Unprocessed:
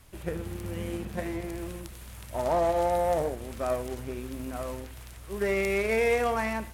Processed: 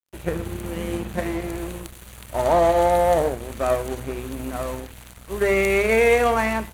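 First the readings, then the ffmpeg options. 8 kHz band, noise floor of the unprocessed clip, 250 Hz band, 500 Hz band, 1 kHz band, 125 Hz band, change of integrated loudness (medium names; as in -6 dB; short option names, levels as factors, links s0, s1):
+7.5 dB, -45 dBFS, +6.5 dB, +7.5 dB, +8.0 dB, +6.0 dB, +7.5 dB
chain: -af "asuperstop=centerf=5200:order=4:qfactor=5.5,aeval=exprs='sgn(val(0))*max(abs(val(0))-0.00473,0)':c=same,bandreject=f=50:t=h:w=6,bandreject=f=100:t=h:w=6,bandreject=f=150:t=h:w=6,bandreject=f=200:t=h:w=6,bandreject=f=250:t=h:w=6,volume=2.66"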